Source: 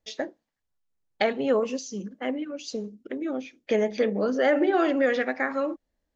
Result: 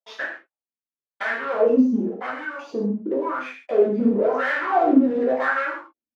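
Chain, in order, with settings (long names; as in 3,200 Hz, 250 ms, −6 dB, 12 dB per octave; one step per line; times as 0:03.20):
leveller curve on the samples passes 5
LFO wah 0.94 Hz 220–1,700 Hz, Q 6.1
reverb whose tail is shaped and stops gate 180 ms falling, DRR −4 dB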